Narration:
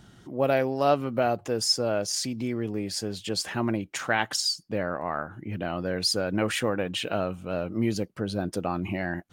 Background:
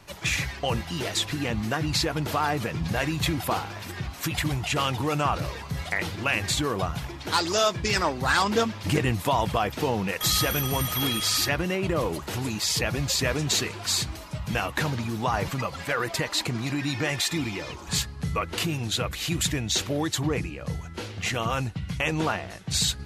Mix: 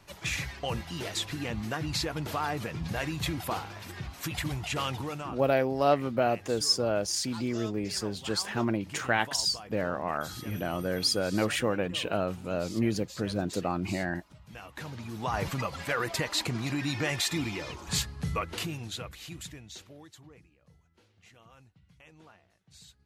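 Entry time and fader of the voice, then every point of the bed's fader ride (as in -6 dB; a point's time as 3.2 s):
5.00 s, -1.5 dB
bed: 4.95 s -6 dB
5.5 s -20.5 dB
14.48 s -20.5 dB
15.44 s -3 dB
18.31 s -3 dB
20.49 s -29.5 dB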